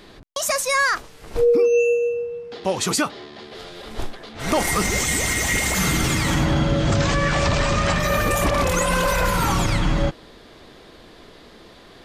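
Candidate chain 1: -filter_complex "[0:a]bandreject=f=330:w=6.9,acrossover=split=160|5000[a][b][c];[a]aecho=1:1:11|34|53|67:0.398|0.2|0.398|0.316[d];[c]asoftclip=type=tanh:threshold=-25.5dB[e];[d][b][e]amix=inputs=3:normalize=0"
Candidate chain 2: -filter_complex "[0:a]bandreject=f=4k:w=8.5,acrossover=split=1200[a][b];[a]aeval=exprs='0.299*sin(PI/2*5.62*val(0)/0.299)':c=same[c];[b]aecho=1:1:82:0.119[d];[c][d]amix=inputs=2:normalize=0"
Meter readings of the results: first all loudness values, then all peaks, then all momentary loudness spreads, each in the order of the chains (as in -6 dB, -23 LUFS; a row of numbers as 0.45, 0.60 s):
-20.5, -14.0 LUFS; -7.0, -5.0 dBFS; 16, 17 LU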